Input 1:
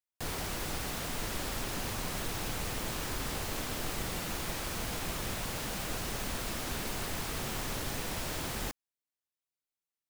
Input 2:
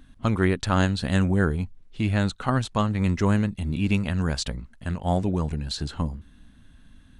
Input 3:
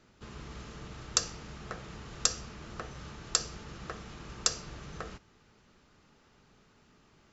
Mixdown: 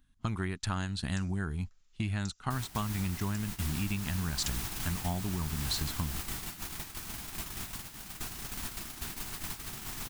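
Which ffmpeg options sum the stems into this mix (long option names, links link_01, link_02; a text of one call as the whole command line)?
ffmpeg -i stem1.wav -i stem2.wav -i stem3.wav -filter_complex "[0:a]adelay=2300,volume=-1dB[link_01];[1:a]equalizer=frequency=270:width=1.9:gain=-3.5,volume=-1.5dB,asplit=2[link_02][link_03];[2:a]aderivative,volume=-7dB[link_04];[link_03]apad=whole_len=322847[link_05];[link_04][link_05]sidechaincompress=threshold=-39dB:ratio=8:attack=33:release=127[link_06];[link_01][link_02]amix=inputs=2:normalize=0,equalizer=frequency=520:width=2.8:gain=-14.5,acompressor=threshold=-29dB:ratio=10,volume=0dB[link_07];[link_06][link_07]amix=inputs=2:normalize=0,agate=range=-15dB:threshold=-36dB:ratio=16:detection=peak,highshelf=frequency=7200:gain=7.5" out.wav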